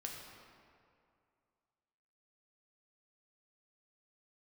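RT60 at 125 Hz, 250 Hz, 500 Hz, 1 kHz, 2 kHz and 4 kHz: 2.4, 2.4, 2.4, 2.4, 1.9, 1.4 seconds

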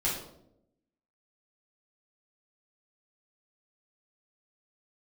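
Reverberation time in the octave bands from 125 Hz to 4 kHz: 1.0, 1.1, 0.95, 0.65, 0.50, 0.50 seconds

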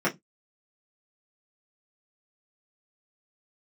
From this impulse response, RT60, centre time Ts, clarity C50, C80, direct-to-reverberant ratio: non-exponential decay, 18 ms, 19.5 dB, 32.5 dB, −8.0 dB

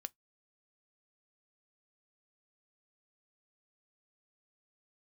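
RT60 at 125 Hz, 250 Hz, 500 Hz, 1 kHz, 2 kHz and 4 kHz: 0.20, 0.15, 0.15, 0.15, 0.10, 0.10 seconds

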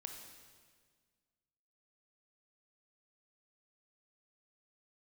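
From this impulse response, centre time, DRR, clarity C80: 45 ms, 3.5 dB, 6.0 dB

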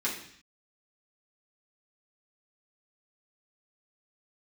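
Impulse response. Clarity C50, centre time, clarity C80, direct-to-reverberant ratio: 6.0 dB, 29 ms, 9.5 dB, −7.0 dB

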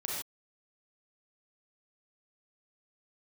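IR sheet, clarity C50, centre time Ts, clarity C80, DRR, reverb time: −1.5 dB, 62 ms, 2.5 dB, −3.5 dB, non-exponential decay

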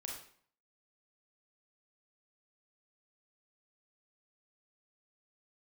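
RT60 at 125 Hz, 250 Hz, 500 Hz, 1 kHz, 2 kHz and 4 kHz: 0.60, 0.60, 0.55, 0.55, 0.50, 0.45 seconds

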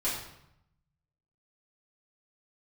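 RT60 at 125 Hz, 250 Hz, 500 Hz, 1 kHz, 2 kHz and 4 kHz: 1.4, 1.0, 0.75, 0.80, 0.70, 0.65 seconds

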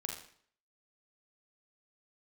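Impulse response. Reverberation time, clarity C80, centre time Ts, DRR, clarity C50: 0.55 s, 8.5 dB, 33 ms, 0.0 dB, 5.0 dB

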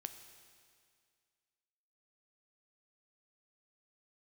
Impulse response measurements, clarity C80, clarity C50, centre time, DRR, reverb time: 10.5 dB, 9.5 dB, 23 ms, 8.0 dB, 2.1 s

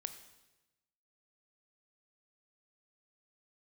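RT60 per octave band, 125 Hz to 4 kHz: 1.3, 1.1, 1.1, 1.0, 1.0, 1.0 seconds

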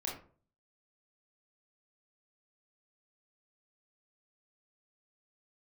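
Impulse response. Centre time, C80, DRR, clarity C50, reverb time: 34 ms, 11.0 dB, −3.5 dB, 5.5 dB, 0.45 s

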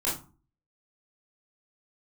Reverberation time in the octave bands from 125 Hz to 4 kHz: 0.55, 0.50, 0.35, 0.40, 0.25, 0.20 seconds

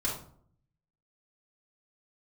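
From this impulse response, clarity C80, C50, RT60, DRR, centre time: 9.5 dB, 4.0 dB, 0.60 s, −7.5 dB, 35 ms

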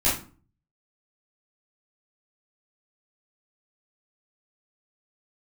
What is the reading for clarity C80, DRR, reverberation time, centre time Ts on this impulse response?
11.5 dB, −10.5 dB, 0.40 s, 38 ms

